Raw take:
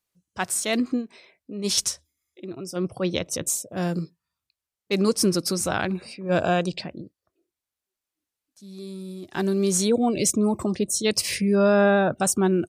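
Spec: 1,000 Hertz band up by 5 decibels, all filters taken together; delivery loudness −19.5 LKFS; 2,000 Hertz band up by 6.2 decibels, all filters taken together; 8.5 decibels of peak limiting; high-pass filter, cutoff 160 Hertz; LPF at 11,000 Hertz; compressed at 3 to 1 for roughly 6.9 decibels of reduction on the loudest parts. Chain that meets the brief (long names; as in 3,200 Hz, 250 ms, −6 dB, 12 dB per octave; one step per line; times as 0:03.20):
high-pass filter 160 Hz
low-pass filter 11,000 Hz
parametric band 1,000 Hz +6 dB
parametric band 2,000 Hz +6 dB
downward compressor 3 to 1, threshold −21 dBFS
level +8 dB
brickwall limiter −7.5 dBFS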